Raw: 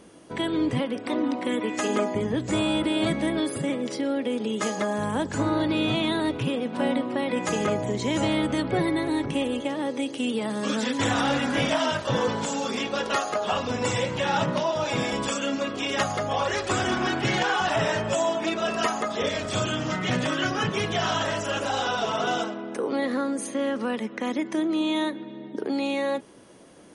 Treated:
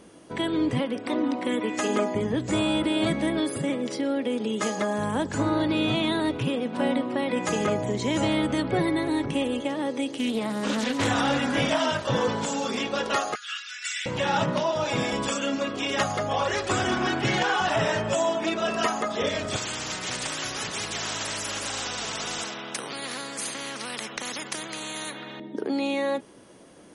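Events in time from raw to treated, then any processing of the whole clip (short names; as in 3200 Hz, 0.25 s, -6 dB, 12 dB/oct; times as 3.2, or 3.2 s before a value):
10.08–11.08 Doppler distortion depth 0.24 ms
13.35–14.06 steep high-pass 1400 Hz 72 dB/oct
19.56–25.4 spectral compressor 4:1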